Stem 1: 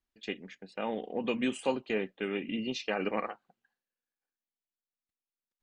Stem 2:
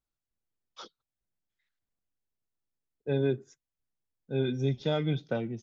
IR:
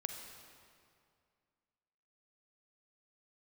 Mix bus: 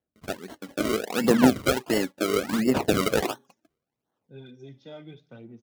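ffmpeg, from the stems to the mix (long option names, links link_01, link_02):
-filter_complex "[0:a]acrusher=samples=35:mix=1:aa=0.000001:lfo=1:lforange=35:lforate=1.4,volume=-1.5dB[link_01];[1:a]flanger=delay=4:depth=8.5:regen=62:speed=0.89:shape=sinusoidal,volume=-20dB,asplit=2[link_02][link_03];[link_03]volume=-20dB,aecho=0:1:61|122|183|244|305:1|0.39|0.152|0.0593|0.0231[link_04];[link_01][link_02][link_04]amix=inputs=3:normalize=0,dynaudnorm=framelen=200:gausssize=3:maxgain=9.5dB,aphaser=in_gain=1:out_gain=1:delay=3.6:decay=0.5:speed=0.72:type=sinusoidal,highpass=99"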